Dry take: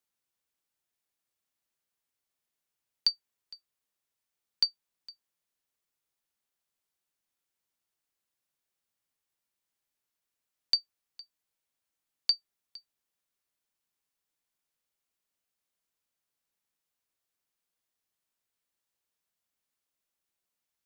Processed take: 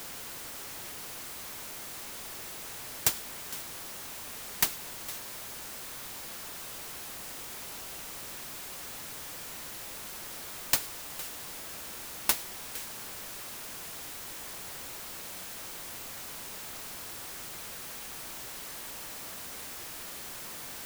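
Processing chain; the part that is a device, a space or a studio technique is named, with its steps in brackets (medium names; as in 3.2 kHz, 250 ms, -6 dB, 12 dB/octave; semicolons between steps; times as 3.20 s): early CD player with a faulty converter (jump at every zero crossing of -33 dBFS; sampling jitter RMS 0.087 ms)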